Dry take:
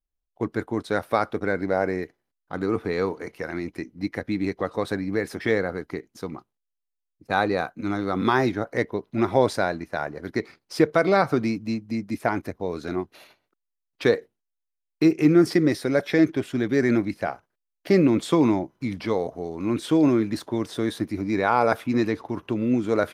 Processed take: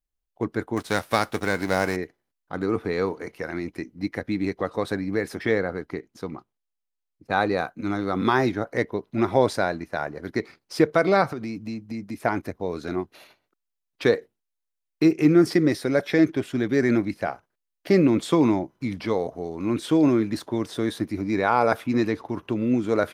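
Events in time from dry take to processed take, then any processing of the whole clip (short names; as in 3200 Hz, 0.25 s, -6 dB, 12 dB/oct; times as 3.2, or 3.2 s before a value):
0.76–1.95 spectral whitening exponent 0.6
5.43–7.41 high shelf 6200 Hz -6.5 dB
11.28–12.18 compressor, threshold -28 dBFS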